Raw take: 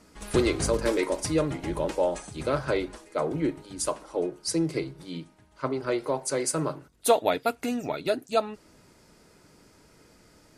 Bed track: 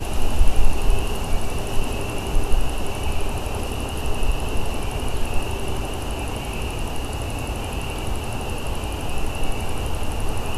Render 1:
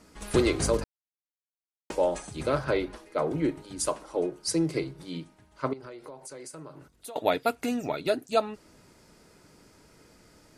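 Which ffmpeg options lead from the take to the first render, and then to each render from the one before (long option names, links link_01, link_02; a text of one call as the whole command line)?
ffmpeg -i in.wav -filter_complex "[0:a]asettb=1/sr,asplit=3[link_01][link_02][link_03];[link_01]atrim=end=2.644[link_04];[link_02]atrim=start=2.64:end=3.27,asetpts=PTS-STARTPTS,afade=type=in:duration=0.004:curve=qsin,afade=type=out:start_time=0.626:duration=0.004:curve=qsin,equalizer=frequency=7700:width=1.6:gain=-8.5[link_05];[link_03]atrim=start=3.266[link_06];[link_04][link_05]acrossfade=duration=0.004:curve1=hsin:curve2=qsin[link_07];[link_07][link_06]acrossfade=duration=0.004:curve1=qsin:curve2=hsin,asettb=1/sr,asplit=3[link_08][link_09][link_10];[link_08]atrim=end=5.734[link_11];[link_09]atrim=start=5.73:end=7.16,asetpts=PTS-STARTPTS,afade=type=in:duration=0.004:curve=qsin,afade=type=out:start_time=1.426:duration=0.004:curve=qsin,acompressor=threshold=-41dB:ratio=6:attack=3.2:release=140:knee=1:detection=peak[link_12];[link_10]atrim=start=7.156[link_13];[link_11][link_12]acrossfade=duration=0.004:curve1=hsin:curve2=qsin[link_14];[link_14][link_13]acrossfade=duration=0.004:curve1=qsin:curve2=hsin,asplit=3[link_15][link_16][link_17];[link_15]atrim=end=0.84,asetpts=PTS-STARTPTS,afade=type=out:start_time=0.836:duration=0.004:curve=hsin[link_18];[link_16]atrim=start=0.84:end=1.9,asetpts=PTS-STARTPTS,volume=0[link_19];[link_17]atrim=start=1.9,asetpts=PTS-STARTPTS,afade=type=in:duration=0.004:curve=hsin[link_20];[link_18][link_19][link_20]concat=n=3:v=0:a=1" out.wav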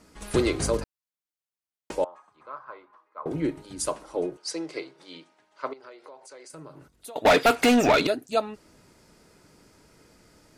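ffmpeg -i in.wav -filter_complex "[0:a]asettb=1/sr,asplit=3[link_01][link_02][link_03];[link_01]atrim=end=2.044[link_04];[link_02]atrim=start=2.04:end=3.26,asetpts=PTS-STARTPTS,afade=type=in:duration=0.004:curve=qsin,afade=type=out:start_time=1.216:duration=0.004:curve=qsin,bandpass=frequency=1100:width_type=q:width=6.5[link_05];[link_03]atrim=start=3.256[link_06];[link_04][link_05]acrossfade=duration=0.004:curve1=hsin:curve2=qsin[link_07];[link_07][link_06]acrossfade=duration=0.004:curve1=qsin:curve2=hsin,asettb=1/sr,asplit=3[link_08][link_09][link_10];[link_08]atrim=end=4.374[link_11];[link_09]atrim=start=4.37:end=6.5,asetpts=PTS-STARTPTS,afade=type=in:duration=0.004:curve=qsin,afade=type=out:start_time=2.126:duration=0.004:curve=qsin,highpass=480,lowpass=6400[link_12];[link_10]atrim=start=6.496[link_13];[link_11][link_12]acrossfade=duration=0.004:curve1=hsin:curve2=qsin[link_14];[link_14][link_13]acrossfade=duration=0.004:curve1=qsin:curve2=hsin,asettb=1/sr,asplit=3[link_15][link_16][link_17];[link_15]atrim=end=7.254[link_18];[link_16]atrim=start=7.25:end=8.07,asetpts=PTS-STARTPTS,afade=type=in:duration=0.004:curve=qsin,afade=type=out:start_time=0.816:duration=0.004:curve=qsin,asplit=2[link_19][link_20];[link_20]highpass=frequency=720:poles=1,volume=30dB,asoftclip=type=tanh:threshold=-9.5dB[link_21];[link_19][link_21]amix=inputs=2:normalize=0,lowpass=frequency=4000:poles=1,volume=-6dB[link_22];[link_17]atrim=start=8.066[link_23];[link_18][link_22]acrossfade=duration=0.004:curve1=hsin:curve2=qsin[link_24];[link_24][link_23]acrossfade=duration=0.004:curve1=qsin:curve2=hsin" out.wav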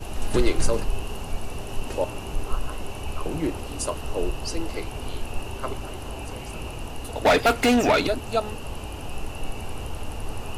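ffmpeg -i in.wav -i bed.wav -filter_complex "[1:a]volume=-7.5dB[link_01];[0:a][link_01]amix=inputs=2:normalize=0" out.wav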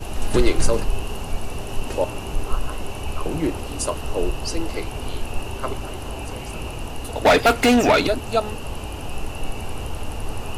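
ffmpeg -i in.wav -af "volume=3.5dB" out.wav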